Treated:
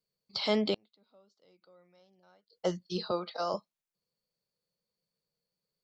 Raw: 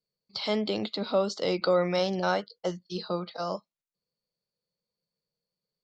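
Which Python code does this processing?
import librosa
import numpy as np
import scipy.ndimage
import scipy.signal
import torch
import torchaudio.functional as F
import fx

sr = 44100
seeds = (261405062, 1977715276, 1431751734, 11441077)

y = fx.gate_flip(x, sr, shuts_db=-29.0, range_db=-37, at=(0.74, 2.53))
y = fx.highpass(y, sr, hz=300.0, slope=12, at=(3.11, 3.54))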